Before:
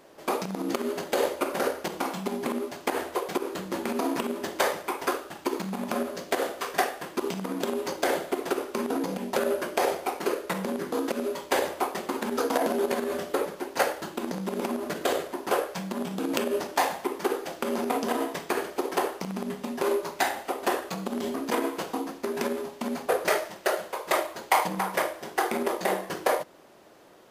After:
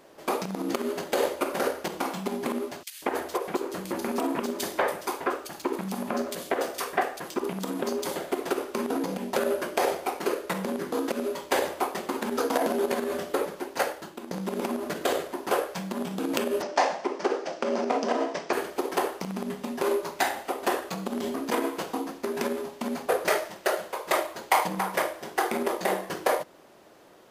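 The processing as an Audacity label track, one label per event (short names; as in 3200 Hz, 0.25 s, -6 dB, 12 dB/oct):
2.830000	8.160000	bands offset in time highs, lows 0.19 s, split 3000 Hz
13.570000	14.310000	fade out, to -10 dB
16.620000	18.530000	speaker cabinet 180–6400 Hz, peaks and dips at 600 Hz +7 dB, 3600 Hz -4 dB, 5500 Hz +5 dB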